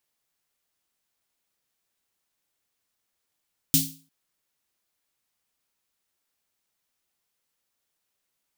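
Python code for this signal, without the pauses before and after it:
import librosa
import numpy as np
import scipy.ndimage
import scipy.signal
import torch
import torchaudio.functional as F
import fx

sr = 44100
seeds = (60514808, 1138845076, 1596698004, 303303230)

y = fx.drum_snare(sr, seeds[0], length_s=0.35, hz=160.0, second_hz=270.0, noise_db=5, noise_from_hz=3200.0, decay_s=0.4, noise_decay_s=0.35)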